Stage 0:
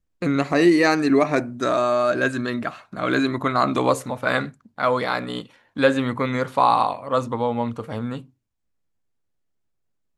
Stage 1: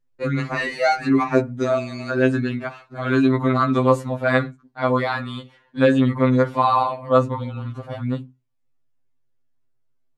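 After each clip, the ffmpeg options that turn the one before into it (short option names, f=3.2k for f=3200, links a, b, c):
-af "lowpass=f=3.3k:p=1,afftfilt=real='re*2.45*eq(mod(b,6),0)':imag='im*2.45*eq(mod(b,6),0)':win_size=2048:overlap=0.75,volume=3dB"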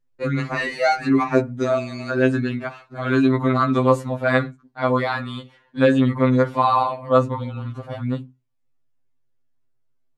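-af anull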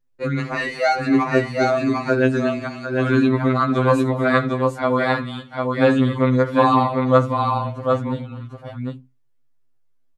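-af "aecho=1:1:77|244|750:0.119|0.126|0.668"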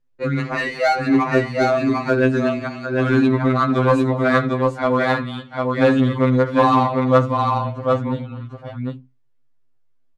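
-filter_complex "[0:a]asplit=2[a][b];[b]volume=16dB,asoftclip=hard,volume=-16dB,volume=-9.5dB[c];[a][c]amix=inputs=2:normalize=0,adynamicsmooth=sensitivity=3:basefreq=6.4k,volume=-1dB"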